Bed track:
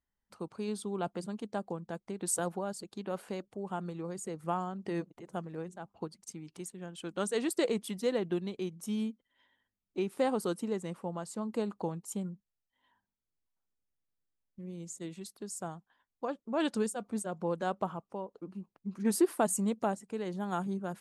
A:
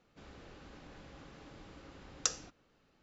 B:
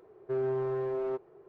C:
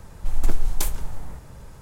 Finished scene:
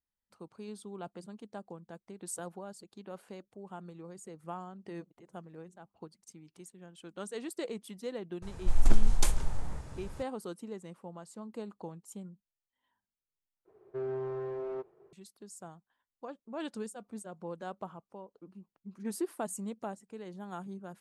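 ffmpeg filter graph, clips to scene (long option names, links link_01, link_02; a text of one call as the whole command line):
ffmpeg -i bed.wav -i cue0.wav -i cue1.wav -i cue2.wav -filter_complex "[0:a]volume=-8dB[link_01];[3:a]lowpass=frequency=10000:width=0.5412,lowpass=frequency=10000:width=1.3066[link_02];[2:a]agate=range=-33dB:threshold=-56dB:ratio=3:release=100:detection=peak[link_03];[link_01]asplit=2[link_04][link_05];[link_04]atrim=end=13.654[link_06];[link_03]atrim=end=1.48,asetpts=PTS-STARTPTS,volume=-5dB[link_07];[link_05]atrim=start=15.126[link_08];[link_02]atrim=end=1.81,asetpts=PTS-STARTPTS,volume=-2dB,afade=type=in:duration=0.004:curve=hsin,afade=type=out:start_time=1.806:duration=0.004:curve=hsin,adelay=371322S[link_09];[link_06][link_07]acrossfade=duration=0.004:curve1=hsin:curve2=hsin[link_10];[link_10][link_08]acrossfade=duration=0.004:curve1=hsin:curve2=hsin[link_11];[link_11][link_09]amix=inputs=2:normalize=0" out.wav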